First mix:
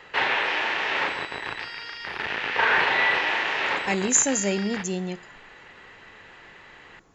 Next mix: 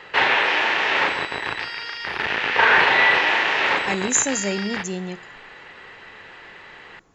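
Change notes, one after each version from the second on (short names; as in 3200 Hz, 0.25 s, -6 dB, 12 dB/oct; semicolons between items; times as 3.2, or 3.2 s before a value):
background +5.5 dB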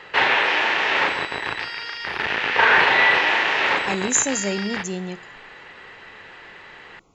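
speech: add Butterworth band-stop 1700 Hz, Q 2.2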